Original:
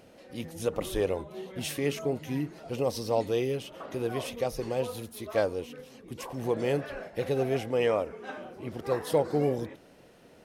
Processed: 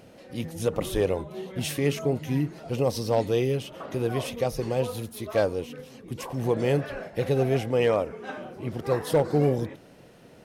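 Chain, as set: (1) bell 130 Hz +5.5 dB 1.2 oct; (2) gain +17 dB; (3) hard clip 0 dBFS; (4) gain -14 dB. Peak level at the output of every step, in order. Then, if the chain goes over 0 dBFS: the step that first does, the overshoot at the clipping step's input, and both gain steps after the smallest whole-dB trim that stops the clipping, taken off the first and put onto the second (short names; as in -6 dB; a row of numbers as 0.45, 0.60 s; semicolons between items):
-12.5, +4.5, 0.0, -14.0 dBFS; step 2, 4.5 dB; step 2 +12 dB, step 4 -9 dB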